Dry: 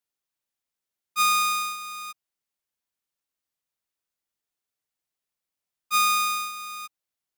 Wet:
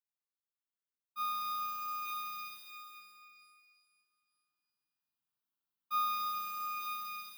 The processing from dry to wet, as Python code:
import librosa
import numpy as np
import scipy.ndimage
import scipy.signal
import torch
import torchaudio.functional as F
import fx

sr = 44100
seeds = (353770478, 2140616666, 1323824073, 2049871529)

y = fx.echo_multitap(x, sr, ms=(395, 880), db=(-10.5, -13.0))
y = fx.rider(y, sr, range_db=5, speed_s=0.5)
y = 10.0 ** (-18.5 / 20.0) * np.tanh(y / 10.0 ** (-18.5 / 20.0))
y = scipy.signal.sosfilt(scipy.signal.butter(2, 110.0, 'highpass', fs=sr, output='sos'), y)
y = fx.peak_eq(y, sr, hz=5900.0, db=-7.5, octaves=2.3)
y = fx.fixed_phaser(y, sr, hz=2100.0, stages=6)
y = fx.rev_shimmer(y, sr, seeds[0], rt60_s=2.1, semitones=12, shimmer_db=-8, drr_db=2.0)
y = y * 10.0 ** (-8.0 / 20.0)